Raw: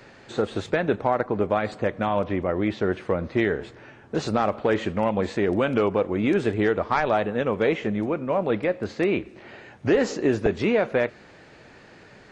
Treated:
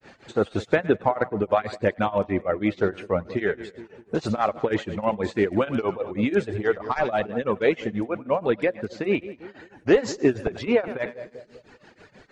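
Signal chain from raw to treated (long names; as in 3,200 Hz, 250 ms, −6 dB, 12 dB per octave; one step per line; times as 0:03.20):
reverb reduction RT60 1.5 s
echo with a time of its own for lows and highs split 600 Hz, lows 202 ms, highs 97 ms, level −15.5 dB
granular cloud 196 ms, grains 6.2 per second, spray 16 ms, pitch spread up and down by 0 semitones
level +4 dB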